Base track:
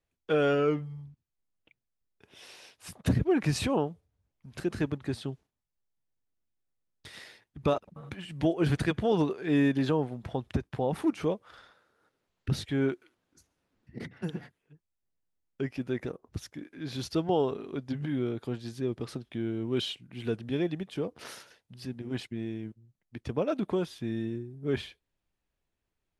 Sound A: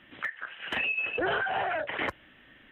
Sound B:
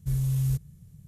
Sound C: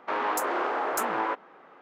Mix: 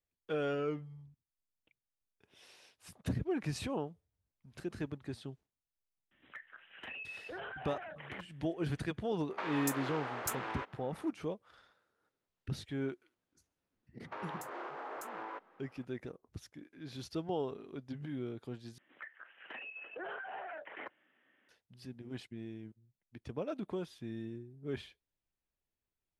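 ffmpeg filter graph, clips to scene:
-filter_complex "[1:a]asplit=2[s0][s1];[3:a]asplit=2[s2][s3];[0:a]volume=0.335[s4];[s2]acrossover=split=150|2100[s5][s6][s7];[s6]acompressor=threshold=0.00708:ratio=3:attack=70:release=253:knee=2.83:detection=peak[s8];[s5][s8][s7]amix=inputs=3:normalize=0[s9];[s3]alimiter=limit=0.0668:level=0:latency=1:release=261[s10];[s1]highpass=290,lowpass=2400[s11];[s4]asplit=2[s12][s13];[s12]atrim=end=18.784[s14];[s11]atrim=end=2.71,asetpts=PTS-STARTPTS,volume=0.2[s15];[s13]atrim=start=21.486[s16];[s0]atrim=end=2.71,asetpts=PTS-STARTPTS,volume=0.158,afade=t=in:d=0.004:c=hsin,afade=t=out:st=2.706:d=0.004:c=hsin,adelay=6110[s17];[s9]atrim=end=1.81,asetpts=PTS-STARTPTS,volume=0.631,afade=t=in:d=0.004:c=hsin,afade=t=out:st=1.806:d=0.004:c=hsin,adelay=410130S[s18];[s10]atrim=end=1.81,asetpts=PTS-STARTPTS,volume=0.282,afade=t=in:d=0.004:c=hsin,afade=t=out:st=1.806:d=0.004:c=hsin,adelay=14040[s19];[s14][s15]acrossfade=d=0.004:c1=hsin:c2=hsin[s20];[s20][s16]acrossfade=d=0.004:c1=hsin:c2=hsin[s21];[s21][s17][s18][s19]amix=inputs=4:normalize=0"

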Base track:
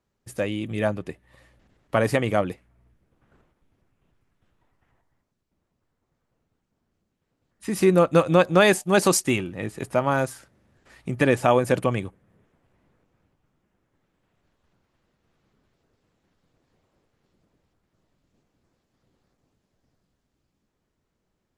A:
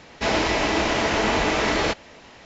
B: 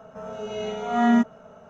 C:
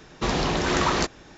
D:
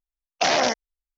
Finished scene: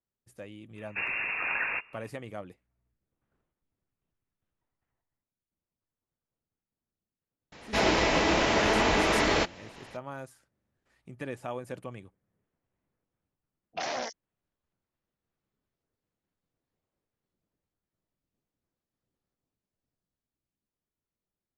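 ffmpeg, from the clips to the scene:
-filter_complex "[0:a]volume=0.126[s0];[3:a]lowpass=f=2400:t=q:w=0.5098,lowpass=f=2400:t=q:w=0.6013,lowpass=f=2400:t=q:w=0.9,lowpass=f=2400:t=q:w=2.563,afreqshift=-2800[s1];[4:a]acrossover=split=260|4000[s2][s3][s4];[s3]adelay=40[s5];[s4]adelay=70[s6];[s2][s5][s6]amix=inputs=3:normalize=0[s7];[s1]atrim=end=1.37,asetpts=PTS-STARTPTS,volume=0.398,afade=t=in:d=0.05,afade=t=out:st=1.32:d=0.05,adelay=740[s8];[1:a]atrim=end=2.45,asetpts=PTS-STARTPTS,volume=0.708,afade=t=in:d=0.004:c=hsin,afade=t=out:st=2.446:d=0.004:c=hsin,adelay=7520[s9];[s7]atrim=end=1.17,asetpts=PTS-STARTPTS,volume=0.237,afade=t=in:d=0.004:c=hsin,afade=t=out:st=1.166:d=0.004:c=hsin,adelay=587412S[s10];[s0][s8][s9][s10]amix=inputs=4:normalize=0"

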